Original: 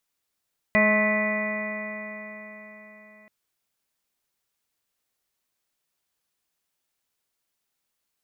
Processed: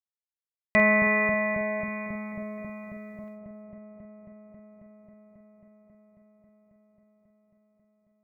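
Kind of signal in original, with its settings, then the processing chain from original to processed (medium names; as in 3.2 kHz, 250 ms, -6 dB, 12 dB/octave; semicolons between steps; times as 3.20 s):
stretched partials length 2.53 s, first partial 211 Hz, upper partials -12.5/1/-15/-7/-15/-19/-17/3/-15/-6.5 dB, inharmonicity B 0.00098, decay 4.35 s, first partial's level -22 dB
chunks repeated in reverse 258 ms, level -11 dB; expander -52 dBFS; feedback echo behind a low-pass 271 ms, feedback 84%, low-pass 510 Hz, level -3 dB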